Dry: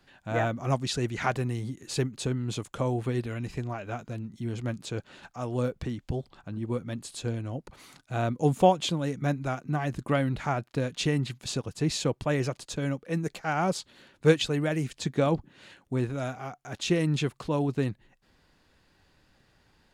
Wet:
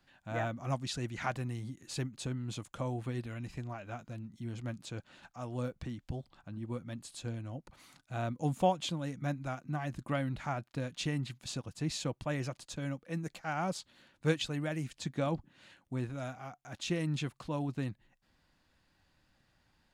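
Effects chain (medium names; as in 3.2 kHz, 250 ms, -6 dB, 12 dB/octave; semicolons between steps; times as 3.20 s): peaking EQ 420 Hz -9 dB 0.33 oct; trim -7 dB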